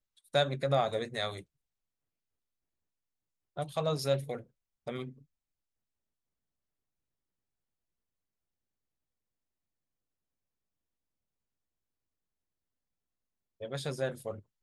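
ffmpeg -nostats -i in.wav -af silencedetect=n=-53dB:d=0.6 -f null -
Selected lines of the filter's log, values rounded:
silence_start: 1.43
silence_end: 3.57 | silence_duration: 2.13
silence_start: 5.22
silence_end: 13.60 | silence_duration: 8.38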